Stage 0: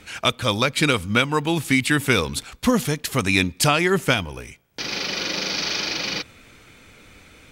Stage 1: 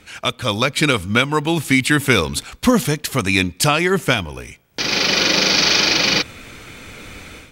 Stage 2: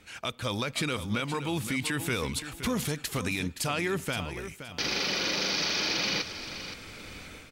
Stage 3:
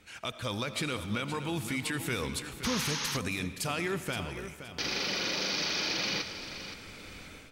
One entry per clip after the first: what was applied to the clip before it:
level rider gain up to 13 dB; trim -1 dB
peak limiter -12 dBFS, peak gain reduction 10 dB; feedback delay 521 ms, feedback 26%, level -11 dB; trim -8.5 dB
algorithmic reverb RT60 1.9 s, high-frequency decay 0.65×, pre-delay 45 ms, DRR 11.5 dB; painted sound noise, 2.64–3.17 s, 810–6700 Hz -32 dBFS; trim -3 dB

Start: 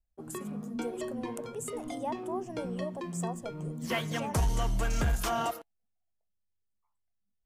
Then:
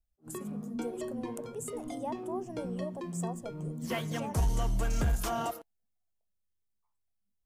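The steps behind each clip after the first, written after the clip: peaking EQ 2.2 kHz -5 dB 2.9 oct; attacks held to a fixed rise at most 350 dB/s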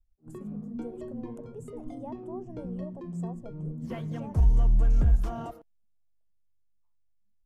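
tilt EQ -3.5 dB/octave; trim -7 dB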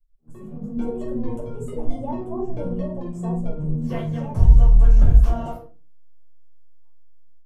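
level rider gain up to 13.5 dB; reverberation RT60 0.35 s, pre-delay 6 ms, DRR -4.5 dB; trim -12 dB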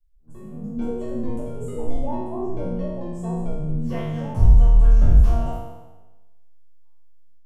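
spectral sustain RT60 1.11 s; trim -2.5 dB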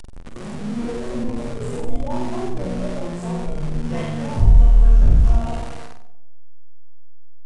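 jump at every zero crossing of -28 dBFS; resampled via 22.05 kHz; flutter echo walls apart 8.2 m, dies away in 0.46 s; trim -1 dB

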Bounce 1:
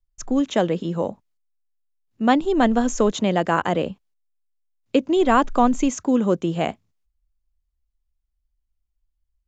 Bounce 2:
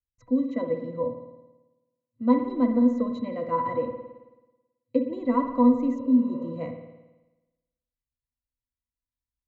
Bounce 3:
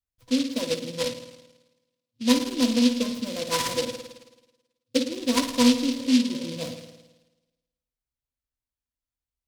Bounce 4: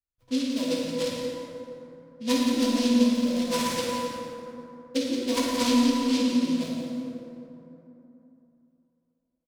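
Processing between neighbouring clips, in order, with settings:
pitch-class resonator B, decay 0.13 s; spring tank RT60 1.1 s, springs 54 ms, chirp 35 ms, DRR 6 dB; spectral replace 5.97–6.44 s, 390–2900 Hz after; trim +3 dB
delay time shaken by noise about 3.7 kHz, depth 0.16 ms
feedback delay 175 ms, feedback 41%, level -9.5 dB; plate-style reverb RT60 3.2 s, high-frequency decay 0.45×, DRR -2.5 dB; tape noise reduction on one side only decoder only; trim -6 dB

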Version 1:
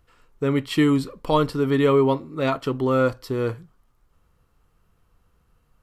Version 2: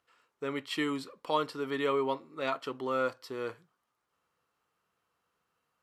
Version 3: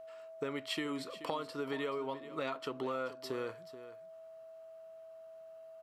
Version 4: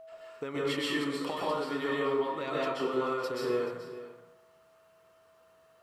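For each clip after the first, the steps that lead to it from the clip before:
frequency weighting A; trim -7.5 dB
compression 10:1, threshold -40 dBFS, peak gain reduction 16.5 dB; whistle 650 Hz -53 dBFS; delay 430 ms -14 dB; trim +5.5 dB
plate-style reverb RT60 0.95 s, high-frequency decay 0.6×, pre-delay 115 ms, DRR -6 dB

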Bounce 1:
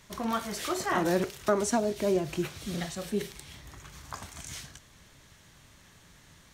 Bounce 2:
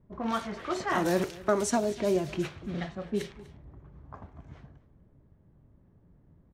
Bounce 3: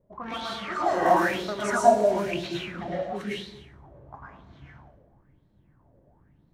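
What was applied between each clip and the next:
level-controlled noise filter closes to 370 Hz, open at -24 dBFS; delay 246 ms -20 dB
plate-style reverb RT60 0.78 s, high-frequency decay 0.8×, pre-delay 95 ms, DRR -6 dB; sweeping bell 1 Hz 540–4100 Hz +18 dB; trim -8.5 dB

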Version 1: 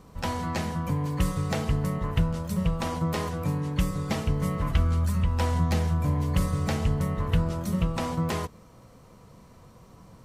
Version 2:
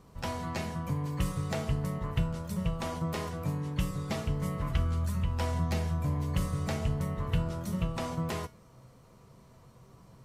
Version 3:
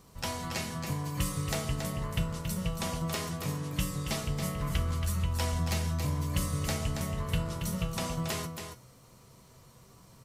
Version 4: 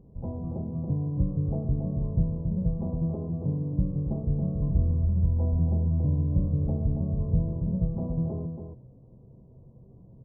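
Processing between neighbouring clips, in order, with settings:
feedback comb 130 Hz, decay 0.29 s, harmonics odd, mix 70%; trim +3.5 dB
treble shelf 2.8 kHz +11.5 dB; delay 277 ms -7 dB; trim -2 dB
Gaussian low-pass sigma 16 samples; trim +7 dB

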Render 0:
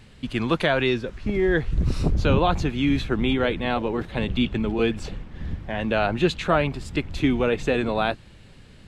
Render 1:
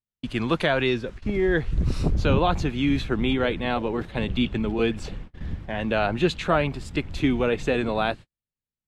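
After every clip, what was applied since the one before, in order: gate -35 dBFS, range -48 dB; trim -1 dB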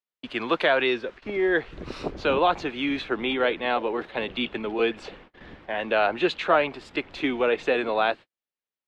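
three-band isolator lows -23 dB, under 310 Hz, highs -17 dB, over 4.6 kHz; trim +2.5 dB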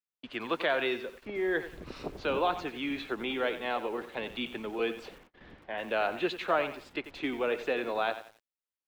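bit-crushed delay 91 ms, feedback 35%, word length 7-bit, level -12 dB; trim -7.5 dB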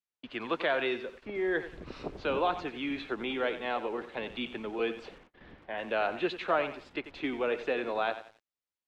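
distance through air 73 m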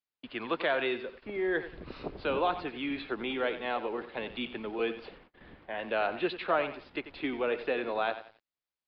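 resampled via 11.025 kHz

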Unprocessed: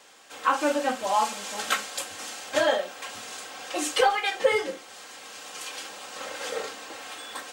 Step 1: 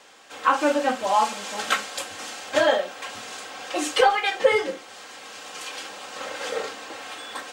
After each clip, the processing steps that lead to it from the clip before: treble shelf 7.6 kHz -8.5 dB; trim +3.5 dB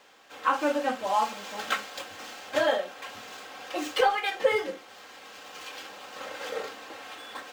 median filter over 5 samples; trim -5 dB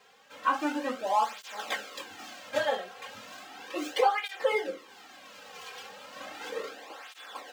cancelling through-zero flanger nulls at 0.35 Hz, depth 3.5 ms

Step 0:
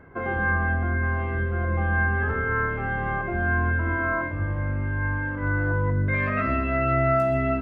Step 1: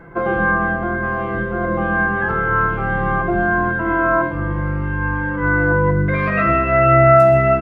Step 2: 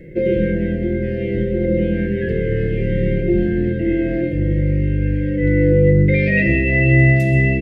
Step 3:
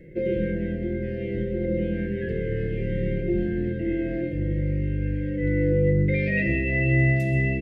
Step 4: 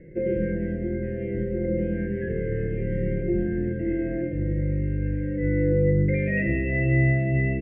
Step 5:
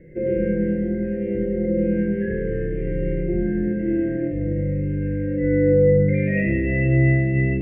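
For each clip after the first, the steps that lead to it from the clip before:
comb 5.9 ms, depth 84%; trim +7 dB
Chebyshev band-stop 590–1800 Hz, order 5; trim +5 dB
band-stop 1.2 kHz; trim -8 dB
low-pass 2.1 kHz 24 dB/octave
Schroeder reverb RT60 0.78 s, combs from 30 ms, DRR 1.5 dB

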